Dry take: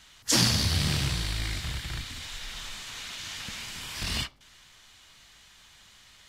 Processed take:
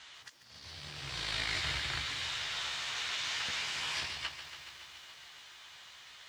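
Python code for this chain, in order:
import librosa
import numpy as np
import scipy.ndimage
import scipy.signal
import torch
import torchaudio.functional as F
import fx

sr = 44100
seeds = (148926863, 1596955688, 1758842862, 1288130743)

y = scipy.signal.sosfilt(scipy.signal.butter(2, 150.0, 'highpass', fs=sr, output='sos'), x)
y = fx.peak_eq(y, sr, hz=210.0, db=-14.5, octaves=1.4)
y = fx.over_compress(y, sr, threshold_db=-37.0, ratio=-0.5)
y = fx.air_absorb(y, sr, metres=89.0)
y = fx.doubler(y, sr, ms=14.0, db=-7.0)
y = fx.echo_crushed(y, sr, ms=141, feedback_pct=80, bits=10, wet_db=-11.5)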